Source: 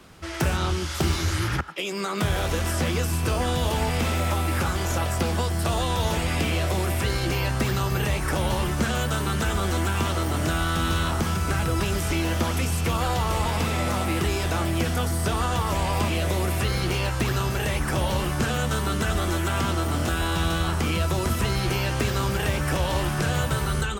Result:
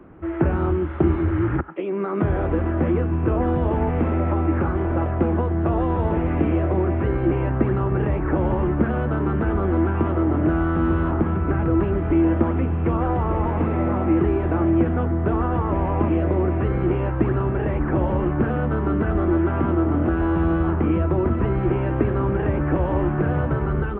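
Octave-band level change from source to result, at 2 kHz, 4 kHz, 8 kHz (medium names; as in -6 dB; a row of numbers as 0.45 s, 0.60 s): -5.0 dB, under -20 dB, under -40 dB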